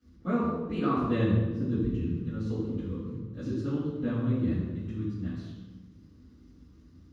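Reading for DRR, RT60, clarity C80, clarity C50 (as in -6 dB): -14.5 dB, 1.3 s, 1.5 dB, -0.5 dB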